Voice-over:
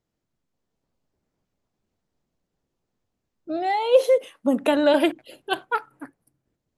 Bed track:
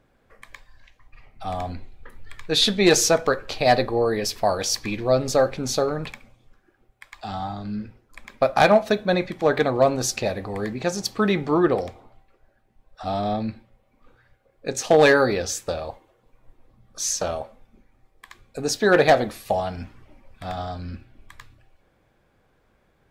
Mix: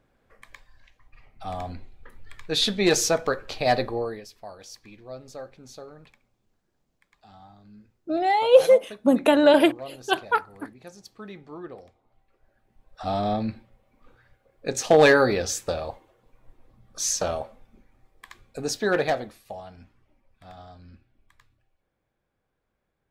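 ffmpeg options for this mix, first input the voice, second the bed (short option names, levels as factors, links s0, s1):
-filter_complex "[0:a]adelay=4600,volume=1.26[s0];[1:a]volume=5.96,afade=t=out:st=3.88:d=0.37:silence=0.158489,afade=t=in:st=12.03:d=0.72:silence=0.105925,afade=t=out:st=18.23:d=1.17:silence=0.188365[s1];[s0][s1]amix=inputs=2:normalize=0"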